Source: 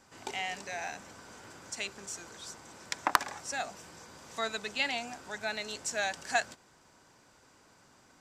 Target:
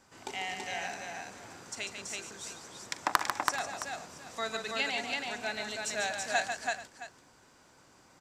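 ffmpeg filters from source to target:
ffmpeg -i in.wav -af "aecho=1:1:42|145|330|432|666:0.15|0.473|0.708|0.141|0.178,volume=-1.5dB" out.wav

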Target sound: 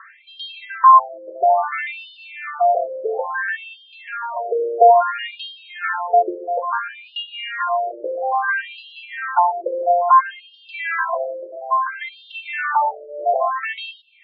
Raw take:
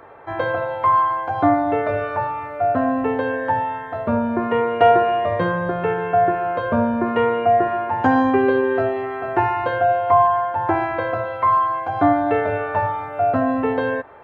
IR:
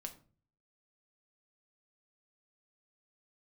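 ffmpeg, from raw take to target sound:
-filter_complex "[0:a]tiltshelf=frequency=970:gain=-7.5,asplit=2[link_01][link_02];[1:a]atrim=start_sample=2205,asetrate=83790,aresample=44100,lowshelf=frequency=89:gain=-11.5[link_03];[link_02][link_03]afir=irnorm=-1:irlink=0,volume=-4.5dB[link_04];[link_01][link_04]amix=inputs=2:normalize=0,afftfilt=real='re*between(b*sr/1024,430*pow(3900/430,0.5+0.5*sin(2*PI*0.59*pts/sr))/1.41,430*pow(3900/430,0.5+0.5*sin(2*PI*0.59*pts/sr))*1.41)':imag='im*between(b*sr/1024,430*pow(3900/430,0.5+0.5*sin(2*PI*0.59*pts/sr))/1.41,430*pow(3900/430,0.5+0.5*sin(2*PI*0.59*pts/sr))*1.41)':win_size=1024:overlap=0.75,volume=4.5dB"

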